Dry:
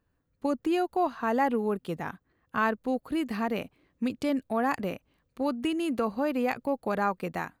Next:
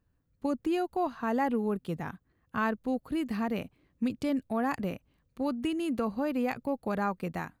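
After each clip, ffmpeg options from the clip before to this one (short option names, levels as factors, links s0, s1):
-af "bass=f=250:g=7,treble=f=4000:g=1,volume=0.631"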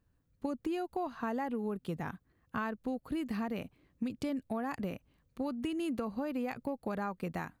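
-af "acompressor=threshold=0.0251:ratio=6"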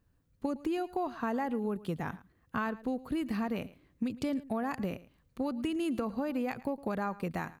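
-af "aecho=1:1:110:0.119,volume=1.33"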